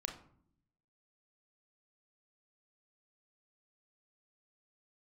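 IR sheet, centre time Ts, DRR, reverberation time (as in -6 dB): 18 ms, 3.0 dB, 0.60 s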